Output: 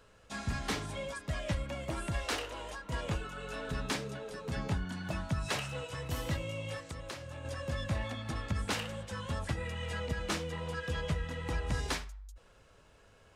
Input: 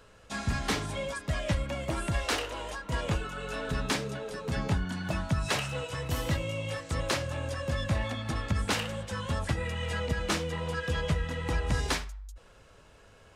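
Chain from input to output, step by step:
0:06.79–0:07.45: downward compressor 4 to 1, threshold −36 dBFS, peak gain reduction 10 dB
level −5 dB

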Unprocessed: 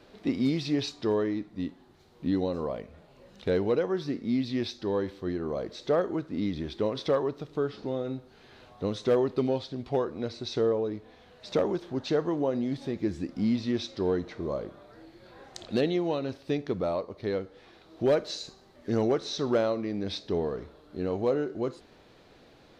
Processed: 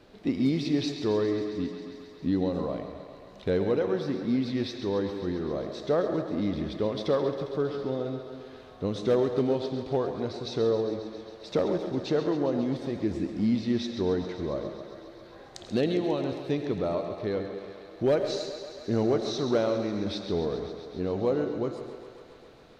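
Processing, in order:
low-shelf EQ 340 Hz +3.5 dB
feedback echo with a high-pass in the loop 135 ms, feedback 82%, high-pass 260 Hz, level −11.5 dB
on a send at −8.5 dB: convolution reverb RT60 1.0 s, pre-delay 60 ms
on the sum: level −1.5 dB

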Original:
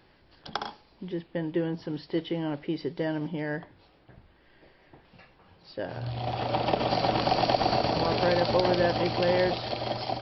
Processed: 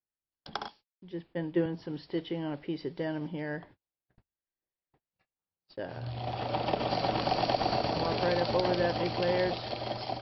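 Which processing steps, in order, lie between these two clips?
noise gate −48 dBFS, range −39 dB
0:00.68–0:01.66: multiband upward and downward expander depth 100%
level −4 dB

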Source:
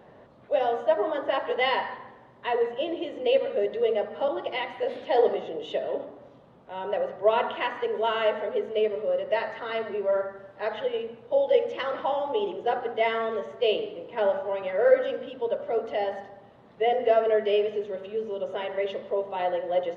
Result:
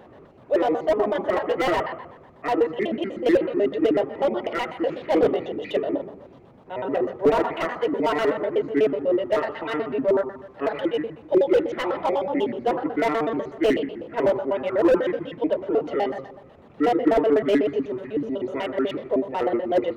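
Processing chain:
pitch shifter gated in a rhythm −7 semitones, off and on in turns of 62 ms
slew-rate limiting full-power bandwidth 59 Hz
level +5 dB

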